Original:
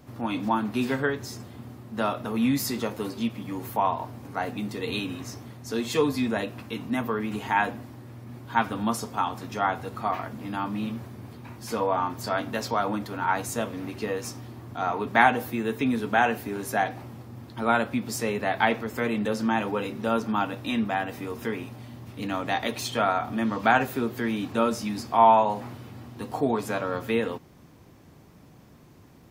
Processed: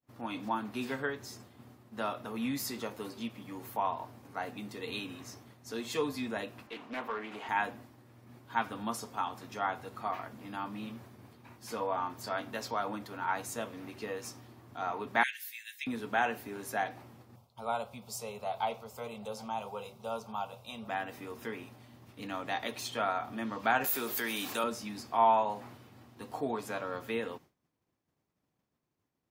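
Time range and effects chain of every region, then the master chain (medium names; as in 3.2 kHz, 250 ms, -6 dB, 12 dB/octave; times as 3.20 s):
6.67–7.49 s: high-pass 330 Hz 6 dB/octave + overdrive pedal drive 14 dB, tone 1.4 kHz, clips at -18 dBFS + loudspeaker Doppler distortion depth 0.35 ms
15.23–15.87 s: steep high-pass 1.7 kHz 72 dB/octave + treble shelf 3.3 kHz +5.5 dB
17.36–20.88 s: static phaser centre 730 Hz, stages 4 + delay 768 ms -21 dB
23.84–24.64 s: RIAA curve recording + level flattener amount 50%
whole clip: expander -39 dBFS; bass shelf 290 Hz -7 dB; trim -7 dB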